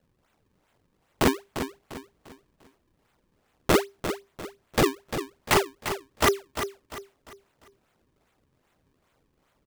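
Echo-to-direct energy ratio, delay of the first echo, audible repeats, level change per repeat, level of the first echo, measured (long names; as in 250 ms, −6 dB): −9.0 dB, 348 ms, 3, −9.0 dB, −9.5 dB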